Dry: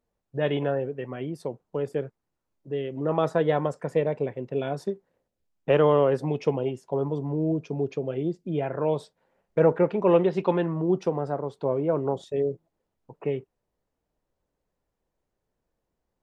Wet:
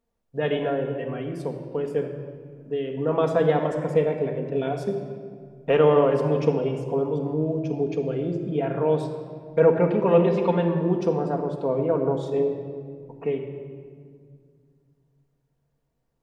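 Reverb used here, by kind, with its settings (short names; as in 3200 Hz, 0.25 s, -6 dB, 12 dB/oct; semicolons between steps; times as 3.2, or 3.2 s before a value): shoebox room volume 3500 m³, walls mixed, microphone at 1.7 m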